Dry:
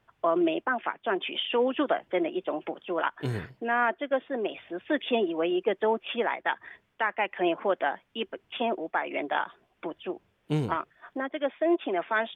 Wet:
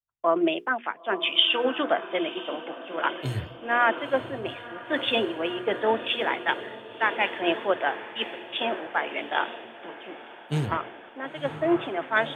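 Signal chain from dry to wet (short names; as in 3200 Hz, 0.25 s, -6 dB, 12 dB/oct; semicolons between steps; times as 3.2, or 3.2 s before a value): high shelf 2600 Hz +9 dB; notches 60/120/180/240/300/360/420/480 Hz; on a send: diffused feedback echo 0.984 s, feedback 71%, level -9 dB; on the sum: three-band expander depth 100%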